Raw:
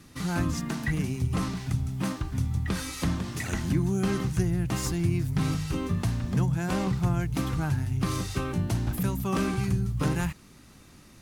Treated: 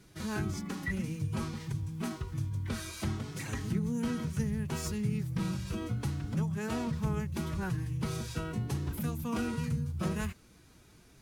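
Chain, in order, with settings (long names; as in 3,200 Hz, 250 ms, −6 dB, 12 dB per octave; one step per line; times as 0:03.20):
phase-vocoder pitch shift with formants kept +3.5 semitones
level −6 dB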